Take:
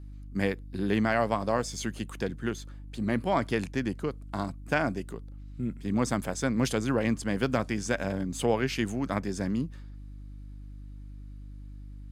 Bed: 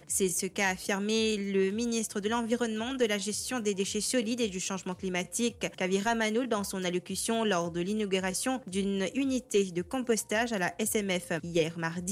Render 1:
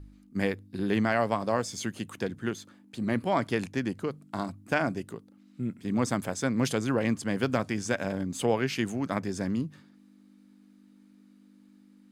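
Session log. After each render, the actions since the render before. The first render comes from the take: de-hum 50 Hz, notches 3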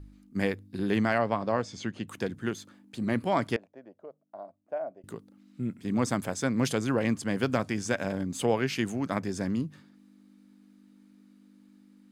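1.18–2.08 air absorption 130 m; 3.56–5.04 band-pass 620 Hz, Q 6.5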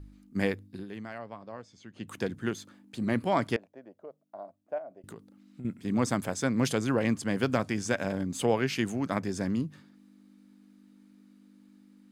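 0.64–2.12 dip -15 dB, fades 0.22 s; 4.78–5.65 compressor, threshold -39 dBFS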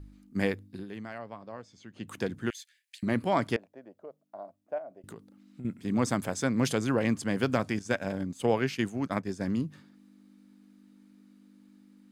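2.5–3.03 steep high-pass 1700 Hz 72 dB/oct; 7.79–9.48 expander -30 dBFS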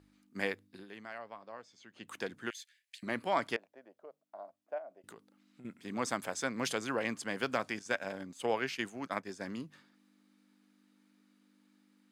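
HPF 870 Hz 6 dB/oct; high shelf 5500 Hz -5 dB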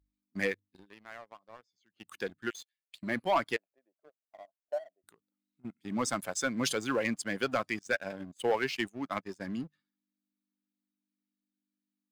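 per-bin expansion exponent 1.5; sample leveller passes 2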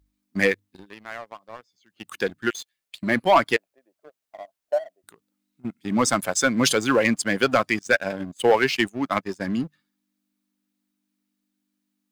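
gain +11 dB

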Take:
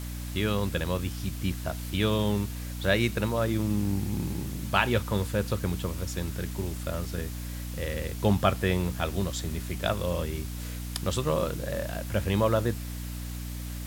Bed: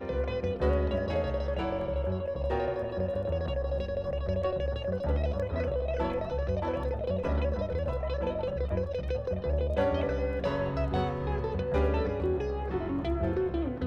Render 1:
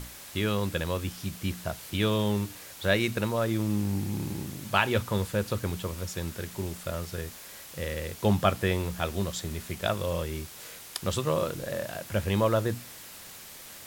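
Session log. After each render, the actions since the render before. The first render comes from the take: notches 60/120/180/240/300 Hz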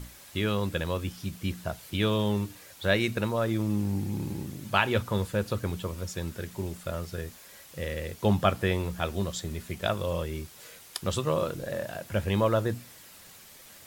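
denoiser 6 dB, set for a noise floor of -46 dBFS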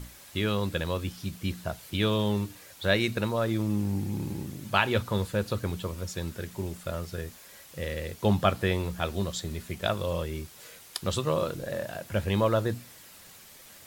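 dynamic EQ 4100 Hz, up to +4 dB, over -54 dBFS, Q 4.2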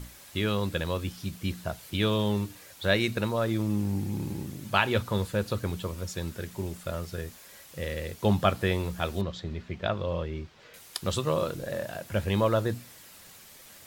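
9.21–10.74 air absorption 200 m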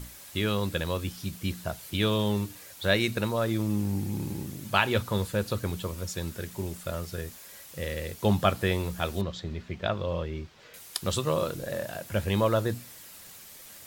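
high shelf 6200 Hz +5 dB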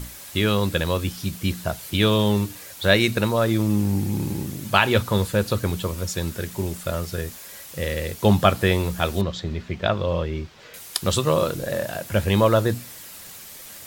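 gain +7 dB; limiter -1 dBFS, peak gain reduction 2 dB

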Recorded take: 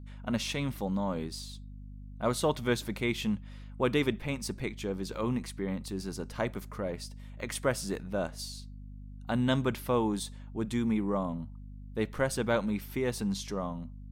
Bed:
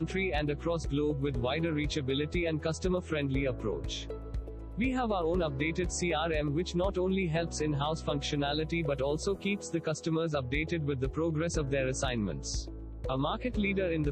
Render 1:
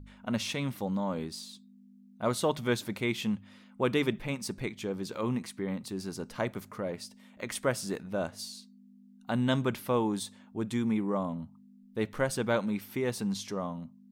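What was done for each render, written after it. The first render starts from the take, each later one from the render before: de-hum 50 Hz, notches 3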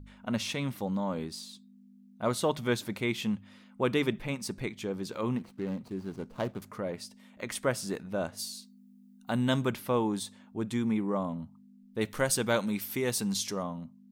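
5.37–6.62 median filter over 25 samples; 8.37–9.71 high shelf 8200 Hz +9.5 dB; 12.01–13.63 high shelf 3700 Hz +11.5 dB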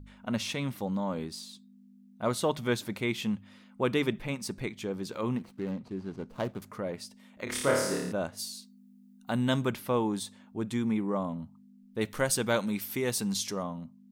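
5.71–6.29 air absorption 52 m; 7.44–8.12 flutter echo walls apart 4.8 m, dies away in 0.88 s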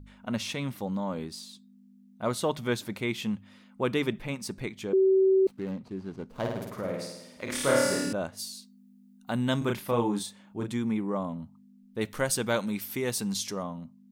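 4.93–5.47 bleep 382 Hz -18 dBFS; 6.29–8.13 flutter echo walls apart 9 m, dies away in 0.96 s; 9.58–10.72 doubler 34 ms -3.5 dB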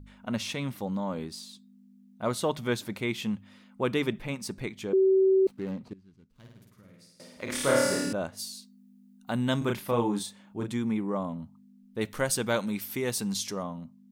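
5.93–7.2 passive tone stack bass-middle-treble 6-0-2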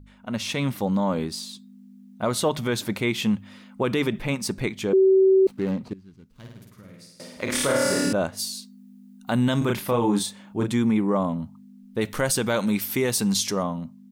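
AGC gain up to 8.5 dB; limiter -13 dBFS, peak gain reduction 8.5 dB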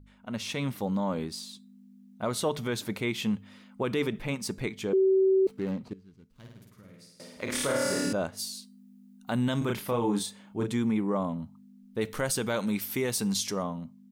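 resonator 440 Hz, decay 0.37 s, harmonics odd, mix 50%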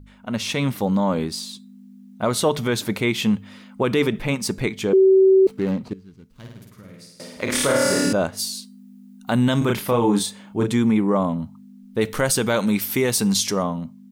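gain +9 dB

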